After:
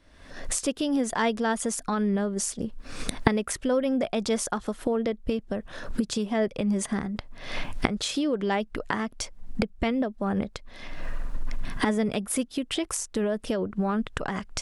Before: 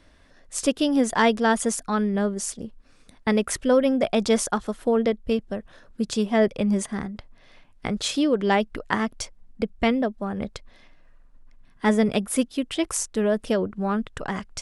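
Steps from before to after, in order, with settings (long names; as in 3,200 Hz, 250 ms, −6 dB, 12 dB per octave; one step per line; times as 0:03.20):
camcorder AGC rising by 56 dB per second
level −6 dB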